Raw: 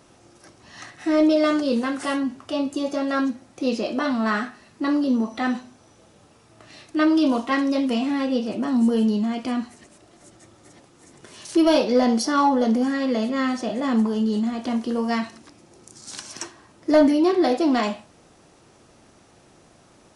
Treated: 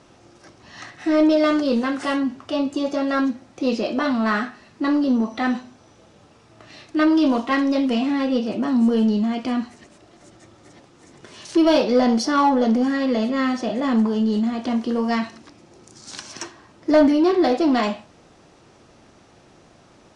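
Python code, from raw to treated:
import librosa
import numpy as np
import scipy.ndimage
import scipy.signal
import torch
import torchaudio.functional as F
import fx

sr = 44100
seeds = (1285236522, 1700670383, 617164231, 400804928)

p1 = scipy.signal.sosfilt(scipy.signal.butter(2, 6200.0, 'lowpass', fs=sr, output='sos'), x)
p2 = np.clip(p1, -10.0 ** (-20.5 / 20.0), 10.0 ** (-20.5 / 20.0))
y = p1 + (p2 * librosa.db_to_amplitude(-10.0))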